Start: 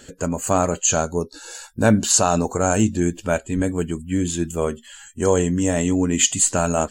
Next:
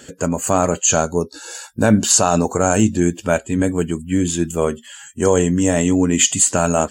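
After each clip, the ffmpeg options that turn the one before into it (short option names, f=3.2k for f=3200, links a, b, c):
-af "highpass=81,bandreject=f=4.1k:w=20,alimiter=level_in=5dB:limit=-1dB:release=50:level=0:latency=1,volume=-1dB"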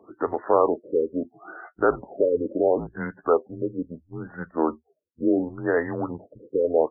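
-af "aeval=exprs='0.841*(cos(1*acos(clip(val(0)/0.841,-1,1)))-cos(1*PI/2))+0.0376*(cos(6*acos(clip(val(0)/0.841,-1,1)))-cos(6*PI/2))+0.00473*(cos(8*acos(clip(val(0)/0.841,-1,1)))-cos(8*PI/2))':c=same,highpass=f=520:t=q:w=0.5412,highpass=f=520:t=q:w=1.307,lowpass=f=3.3k:t=q:w=0.5176,lowpass=f=3.3k:t=q:w=0.7071,lowpass=f=3.3k:t=q:w=1.932,afreqshift=-160,afftfilt=real='re*lt(b*sr/1024,520*pow(2100/520,0.5+0.5*sin(2*PI*0.73*pts/sr)))':imag='im*lt(b*sr/1024,520*pow(2100/520,0.5+0.5*sin(2*PI*0.73*pts/sr)))':win_size=1024:overlap=0.75"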